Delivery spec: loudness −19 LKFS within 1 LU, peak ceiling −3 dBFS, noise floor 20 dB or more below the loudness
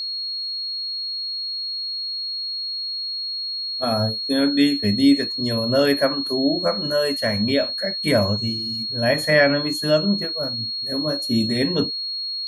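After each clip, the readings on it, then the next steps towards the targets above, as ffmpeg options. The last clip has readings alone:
interfering tone 4,300 Hz; level of the tone −25 dBFS; integrated loudness −21.0 LKFS; sample peak −3.5 dBFS; target loudness −19.0 LKFS
→ -af "bandreject=frequency=4300:width=30"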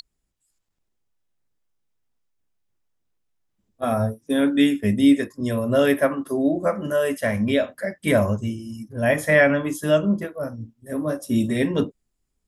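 interfering tone none found; integrated loudness −22.0 LKFS; sample peak −4.5 dBFS; target loudness −19.0 LKFS
→ -af "volume=3dB,alimiter=limit=-3dB:level=0:latency=1"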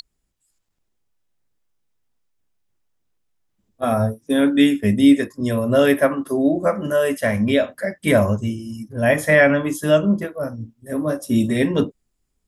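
integrated loudness −19.0 LKFS; sample peak −3.0 dBFS; background noise floor −73 dBFS

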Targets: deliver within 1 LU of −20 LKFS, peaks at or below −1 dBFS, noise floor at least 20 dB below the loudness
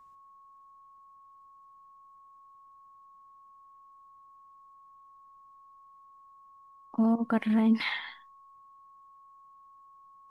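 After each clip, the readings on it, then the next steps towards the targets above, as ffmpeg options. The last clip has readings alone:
interfering tone 1,100 Hz; level of the tone −53 dBFS; integrated loudness −28.0 LKFS; sample peak −16.0 dBFS; target loudness −20.0 LKFS
→ -af "bandreject=frequency=1100:width=30"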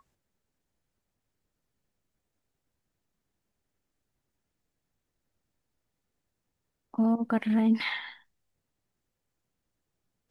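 interfering tone none found; integrated loudness −28.0 LKFS; sample peak −16.0 dBFS; target loudness −20.0 LKFS
→ -af "volume=8dB"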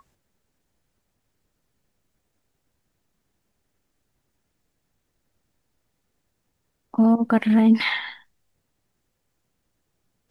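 integrated loudness −20.0 LKFS; sample peak −8.0 dBFS; background noise floor −75 dBFS

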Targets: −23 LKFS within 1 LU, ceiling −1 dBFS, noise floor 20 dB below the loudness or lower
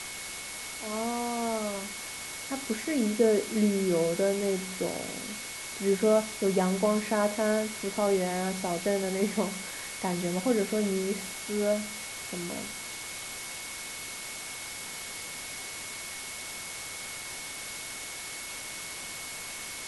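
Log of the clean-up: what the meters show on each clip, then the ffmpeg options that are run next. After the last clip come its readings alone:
interfering tone 2,200 Hz; level of the tone −44 dBFS; background noise floor −40 dBFS; target noise floor −51 dBFS; integrated loudness −31.0 LKFS; sample peak −12.0 dBFS; target loudness −23.0 LKFS
→ -af "bandreject=frequency=2200:width=30"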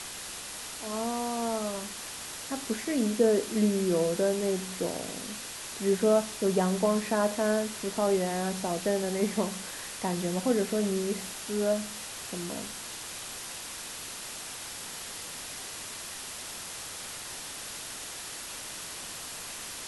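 interfering tone none found; background noise floor −41 dBFS; target noise floor −51 dBFS
→ -af "afftdn=noise_reduction=10:noise_floor=-41"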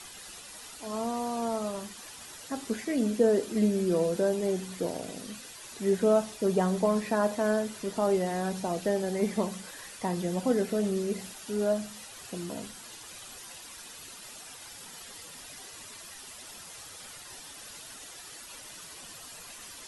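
background noise floor −47 dBFS; target noise floor −50 dBFS
→ -af "afftdn=noise_reduction=6:noise_floor=-47"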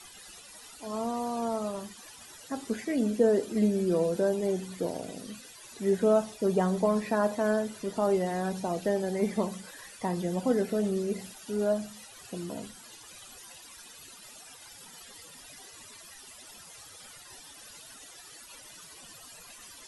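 background noise floor −50 dBFS; integrated loudness −29.5 LKFS; sample peak −12.5 dBFS; target loudness −23.0 LKFS
→ -af "volume=6.5dB"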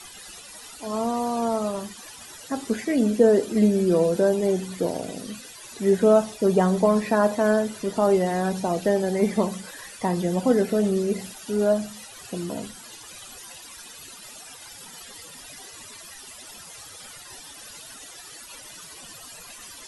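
integrated loudness −23.0 LKFS; sample peak −6.0 dBFS; background noise floor −44 dBFS

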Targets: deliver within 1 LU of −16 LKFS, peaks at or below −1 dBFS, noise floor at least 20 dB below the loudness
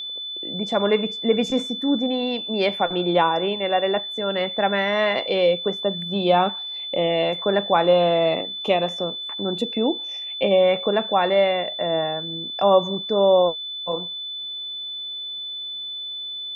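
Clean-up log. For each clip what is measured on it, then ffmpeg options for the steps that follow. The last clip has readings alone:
interfering tone 3,500 Hz; level of the tone −29 dBFS; integrated loudness −22.0 LKFS; sample peak −5.0 dBFS; target loudness −16.0 LKFS
→ -af "bandreject=frequency=3500:width=30"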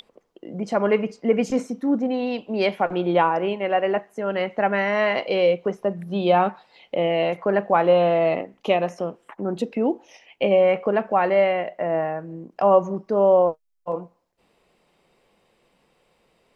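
interfering tone none found; integrated loudness −22.0 LKFS; sample peak −5.5 dBFS; target loudness −16.0 LKFS
→ -af "volume=6dB,alimiter=limit=-1dB:level=0:latency=1"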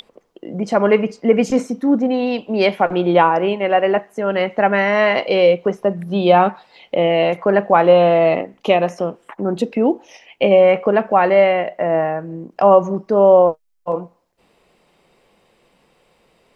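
integrated loudness −16.0 LKFS; sample peak −1.0 dBFS; background noise floor −61 dBFS

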